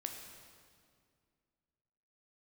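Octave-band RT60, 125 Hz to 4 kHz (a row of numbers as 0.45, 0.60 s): 2.6, 2.6, 2.3, 2.0, 1.8, 1.7 s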